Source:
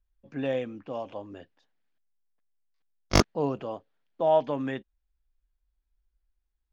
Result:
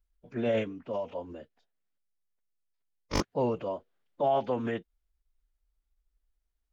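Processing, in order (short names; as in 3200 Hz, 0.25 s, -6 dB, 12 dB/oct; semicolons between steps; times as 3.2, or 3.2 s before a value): bell 530 Hz +2.5 dB 0.7 oct; limiter -18.5 dBFS, peak gain reduction 8.5 dB; formant-preserving pitch shift -2.5 st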